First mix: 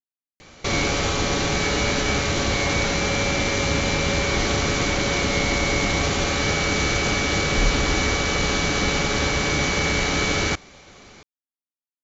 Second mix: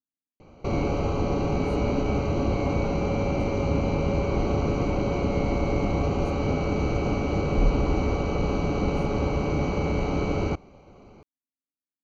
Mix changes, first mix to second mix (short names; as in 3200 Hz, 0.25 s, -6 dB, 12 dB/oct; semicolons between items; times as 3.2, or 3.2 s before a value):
speech +8.0 dB; background: add running mean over 25 samples